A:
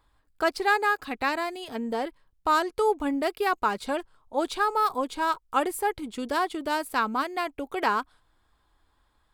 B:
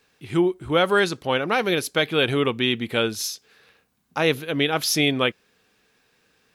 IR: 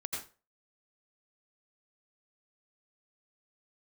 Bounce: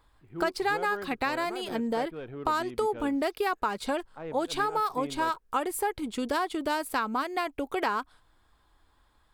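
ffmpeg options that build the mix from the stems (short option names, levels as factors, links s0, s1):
-filter_complex "[0:a]acompressor=threshold=0.0398:ratio=4,volume=1.33[s0];[1:a]lowpass=1200,aeval=exprs='0.335*(cos(1*acos(clip(val(0)/0.335,-1,1)))-cos(1*PI/2))+0.00668*(cos(8*acos(clip(val(0)/0.335,-1,1)))-cos(8*PI/2))':c=same,volume=0.133[s1];[s0][s1]amix=inputs=2:normalize=0"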